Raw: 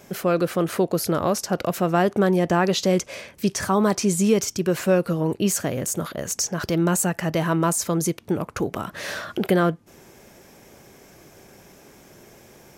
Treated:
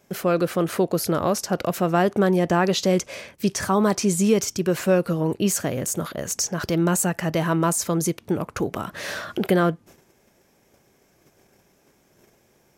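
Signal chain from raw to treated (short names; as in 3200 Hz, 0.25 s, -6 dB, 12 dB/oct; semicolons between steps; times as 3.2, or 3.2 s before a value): gate -46 dBFS, range -12 dB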